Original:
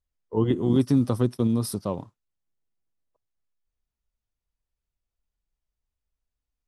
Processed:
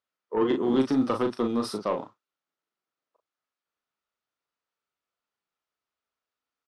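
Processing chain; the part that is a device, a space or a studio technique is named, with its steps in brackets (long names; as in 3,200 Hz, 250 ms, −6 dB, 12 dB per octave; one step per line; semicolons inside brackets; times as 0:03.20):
intercom (band-pass filter 330–4,700 Hz; parametric band 1,300 Hz +8.5 dB 0.37 octaves; soft clipping −21 dBFS, distortion −16 dB; double-tracking delay 38 ms −6 dB)
level +4 dB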